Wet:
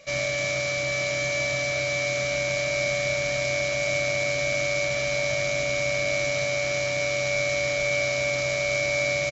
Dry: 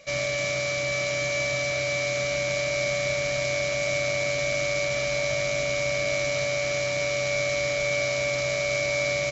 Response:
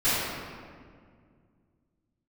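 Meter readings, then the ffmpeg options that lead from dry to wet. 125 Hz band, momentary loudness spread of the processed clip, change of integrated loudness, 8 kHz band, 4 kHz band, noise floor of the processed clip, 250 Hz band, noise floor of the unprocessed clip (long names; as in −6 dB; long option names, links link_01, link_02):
+0.5 dB, 2 LU, +1.0 dB, can't be measured, +0.5 dB, −27 dBFS, +0.5 dB, −27 dBFS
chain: -filter_complex "[0:a]asplit=2[link_01][link_02];[link_02]adelay=29,volume=-11.5dB[link_03];[link_01][link_03]amix=inputs=2:normalize=0"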